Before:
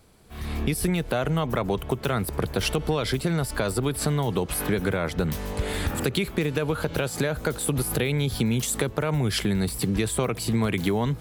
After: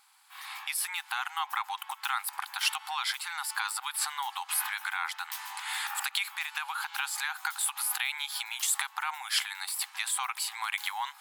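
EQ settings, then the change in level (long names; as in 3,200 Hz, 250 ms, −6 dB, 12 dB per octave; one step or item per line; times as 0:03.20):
linear-phase brick-wall high-pass 760 Hz
notch filter 5,900 Hz, Q 20
0.0 dB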